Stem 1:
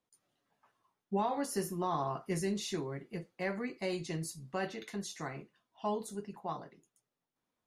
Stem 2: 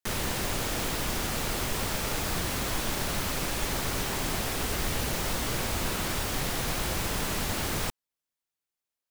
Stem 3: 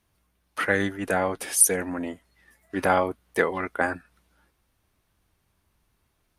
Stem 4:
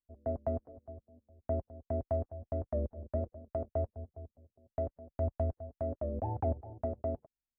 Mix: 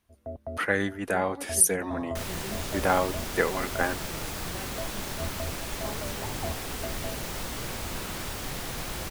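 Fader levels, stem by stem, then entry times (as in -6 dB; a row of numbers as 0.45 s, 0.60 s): -7.0 dB, -4.5 dB, -2.5 dB, -3.5 dB; 0.00 s, 2.10 s, 0.00 s, 0.00 s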